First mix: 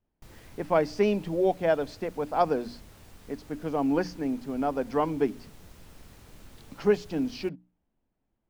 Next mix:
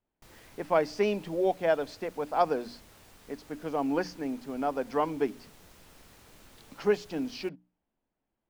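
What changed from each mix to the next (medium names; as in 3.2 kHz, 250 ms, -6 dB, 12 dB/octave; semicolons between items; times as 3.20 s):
master: add bass shelf 250 Hz -9.5 dB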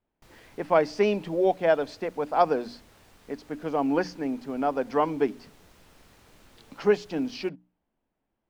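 speech +4.0 dB; master: add treble shelf 6.7 kHz -6 dB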